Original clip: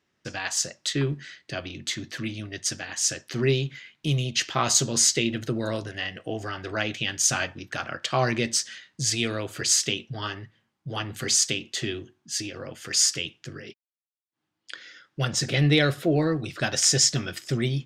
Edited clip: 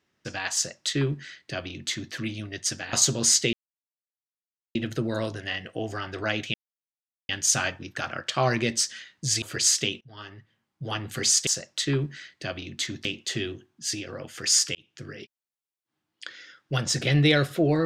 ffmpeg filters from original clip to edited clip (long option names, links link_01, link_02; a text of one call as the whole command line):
ffmpeg -i in.wav -filter_complex "[0:a]asplit=9[link_01][link_02][link_03][link_04][link_05][link_06][link_07][link_08][link_09];[link_01]atrim=end=2.932[link_10];[link_02]atrim=start=4.658:end=5.26,asetpts=PTS-STARTPTS,afade=type=out:start_time=0.598:duration=0.004:curve=hsin,apad=pad_dur=1.22[link_11];[link_03]atrim=start=5.26:end=7.05,asetpts=PTS-STARTPTS,afade=type=in:duration=0.004:curve=hsin,afade=type=out:start_time=1.786:duration=0.004:curve=hsin,apad=pad_dur=0.75[link_12];[link_04]atrim=start=7.05:end=9.182,asetpts=PTS-STARTPTS,afade=type=in:duration=0.004:curve=hsin[link_13];[link_05]atrim=start=9.468:end=10.06,asetpts=PTS-STARTPTS,afade=type=out:start_time=0.588:duration=0.004:curve=hsin:silence=0.1[link_14];[link_06]atrim=start=10.06:end=11.522,asetpts=PTS-STARTPTS,afade=type=in:duration=0.87:silence=0.1[link_15];[link_07]atrim=start=0.548:end=2.132[link_16];[link_08]atrim=start=11.518:end=13.22,asetpts=PTS-STARTPTS,afade=type=out:start_time=1.698:duration=0.004:curve=hsin[link_17];[link_09]atrim=start=13.22,asetpts=PTS-STARTPTS,afade=type=in:duration=0.34[link_18];[link_11][link_12][link_13]concat=n=3:v=0:a=1[link_19];[link_10][link_19]acrossfade=duration=0.004:curve1=hsin:curve2=hsin[link_20];[link_14][link_15]concat=n=2:v=0:a=1[link_21];[link_20][link_21]acrossfade=duration=0.004:curve1=hsin:curve2=hsin[link_22];[link_22][link_16]acrossfade=duration=0.004:curve1=hsin:curve2=hsin[link_23];[link_17][link_18]concat=n=2:v=0:a=1[link_24];[link_23][link_24]acrossfade=duration=0.004:curve1=hsin:curve2=hsin" out.wav